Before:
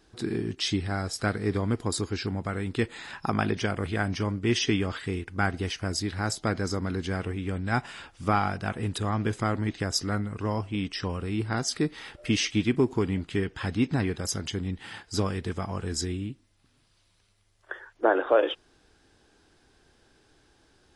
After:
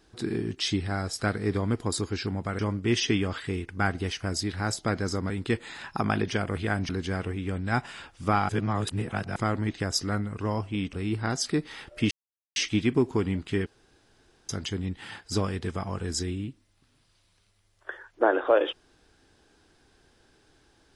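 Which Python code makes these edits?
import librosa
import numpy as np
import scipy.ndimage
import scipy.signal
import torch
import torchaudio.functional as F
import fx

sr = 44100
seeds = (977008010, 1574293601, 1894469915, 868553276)

y = fx.edit(x, sr, fx.move(start_s=2.59, length_s=1.59, to_s=6.89),
    fx.reverse_span(start_s=8.49, length_s=0.87),
    fx.cut(start_s=10.93, length_s=0.27),
    fx.insert_silence(at_s=12.38, length_s=0.45),
    fx.room_tone_fill(start_s=13.48, length_s=0.83), tone=tone)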